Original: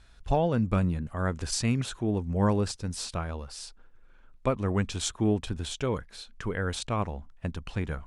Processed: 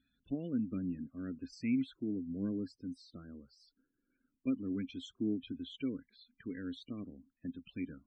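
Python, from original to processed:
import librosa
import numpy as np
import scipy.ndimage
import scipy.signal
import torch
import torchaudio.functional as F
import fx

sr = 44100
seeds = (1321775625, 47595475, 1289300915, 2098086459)

y = fx.spec_topn(x, sr, count=32)
y = fx.vowel_filter(y, sr, vowel='i')
y = y * 10.0 ** (3.0 / 20.0)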